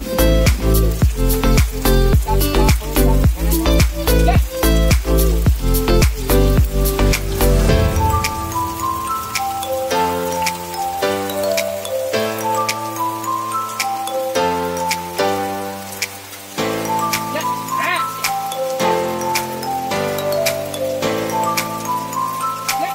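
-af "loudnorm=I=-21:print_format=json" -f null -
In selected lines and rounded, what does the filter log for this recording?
"input_i" : "-18.2",
"input_tp" : "-2.3",
"input_lra" : "4.5",
"input_thresh" : "-28.2",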